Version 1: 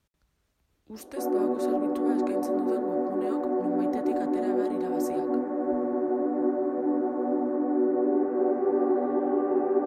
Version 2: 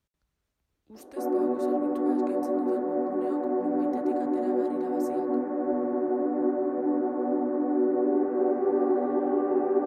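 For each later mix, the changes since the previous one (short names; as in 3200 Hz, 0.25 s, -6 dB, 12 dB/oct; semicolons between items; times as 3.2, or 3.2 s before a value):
speech -7.0 dB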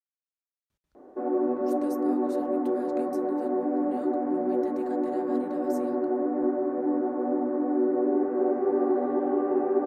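speech: entry +0.70 s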